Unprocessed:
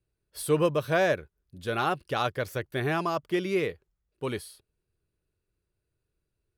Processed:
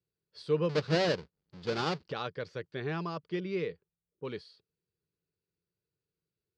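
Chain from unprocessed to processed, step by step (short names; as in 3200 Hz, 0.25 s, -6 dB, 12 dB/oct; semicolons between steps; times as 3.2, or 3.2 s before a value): 0.69–2.12 half-waves squared off; speaker cabinet 100–5200 Hz, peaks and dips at 170 Hz +9 dB, 460 Hz +6 dB, 680 Hz -5 dB, 4600 Hz +8 dB; 3.4–4.25 low-pass opened by the level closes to 660 Hz, open at -20.5 dBFS; gain -9 dB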